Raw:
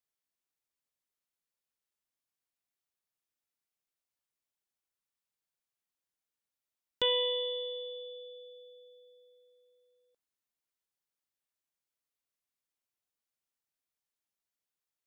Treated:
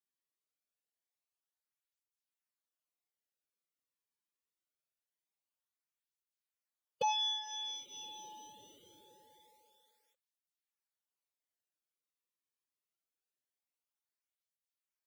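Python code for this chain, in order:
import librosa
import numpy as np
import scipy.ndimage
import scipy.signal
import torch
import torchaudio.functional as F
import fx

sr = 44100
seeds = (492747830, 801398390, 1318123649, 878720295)

y = fx.pitch_keep_formants(x, sr, semitones=9.5)
y = fx.flanger_cancel(y, sr, hz=0.24, depth_ms=1.5)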